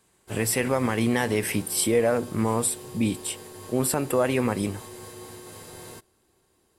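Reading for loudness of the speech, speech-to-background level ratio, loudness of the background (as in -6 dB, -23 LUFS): -25.5 LUFS, 16.5 dB, -42.0 LUFS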